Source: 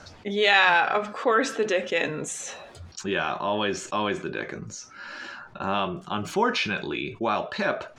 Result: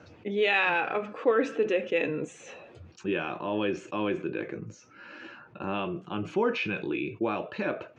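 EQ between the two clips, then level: tone controls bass +7 dB, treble -13 dB; cabinet simulation 110–9400 Hz, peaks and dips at 110 Hz +4 dB, 320 Hz +10 dB, 480 Hz +9 dB, 2.6 kHz +9 dB, 6.3 kHz +4 dB; -8.5 dB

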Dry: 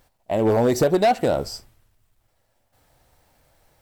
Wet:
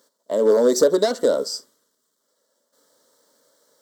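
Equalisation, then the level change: resonant high-pass 340 Hz, resonance Q 3.8; high-order bell 4.9 kHz +8.5 dB; static phaser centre 510 Hz, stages 8; 0.0 dB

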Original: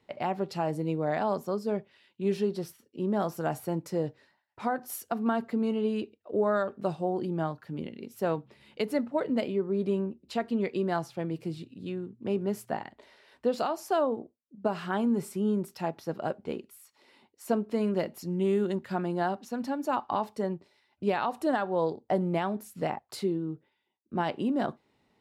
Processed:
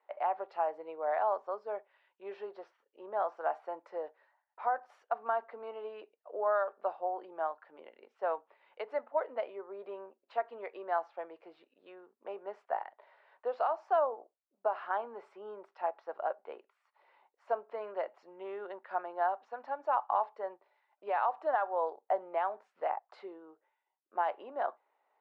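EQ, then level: high-pass 630 Hz 24 dB/octave; low-pass 1.3 kHz 12 dB/octave; distance through air 65 m; +2.0 dB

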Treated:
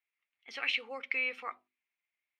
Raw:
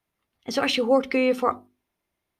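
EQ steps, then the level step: band-pass filter 2.3 kHz, Q 3.8; 0.0 dB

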